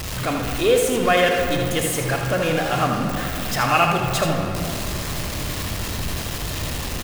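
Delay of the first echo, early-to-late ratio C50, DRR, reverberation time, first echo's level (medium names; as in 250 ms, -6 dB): 79 ms, 2.0 dB, 1.0 dB, 2.7 s, -7.0 dB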